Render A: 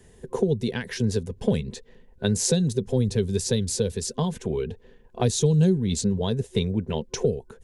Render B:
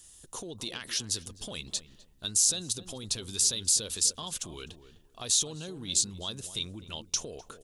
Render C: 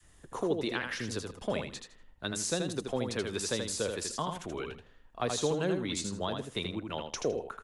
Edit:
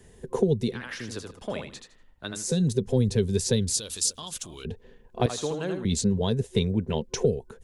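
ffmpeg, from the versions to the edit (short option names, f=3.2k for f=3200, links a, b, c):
-filter_complex "[2:a]asplit=2[a][b];[0:a]asplit=4[c][d][e][f];[c]atrim=end=0.89[g];[a]atrim=start=0.65:end=2.62[h];[d]atrim=start=2.38:end=3.742[i];[1:a]atrim=start=3.738:end=4.652[j];[e]atrim=start=4.648:end=5.262[k];[b]atrim=start=5.258:end=5.852[l];[f]atrim=start=5.848[m];[g][h]acrossfade=d=0.24:c1=tri:c2=tri[n];[n][i]acrossfade=d=0.24:c1=tri:c2=tri[o];[o][j]acrossfade=d=0.004:c1=hsin:c2=hsin[p];[p][k]acrossfade=d=0.004:c1=hsin:c2=hsin[q];[q][l]acrossfade=d=0.004:c1=hsin:c2=hsin[r];[r][m]acrossfade=d=0.004:c1=hsin:c2=hsin"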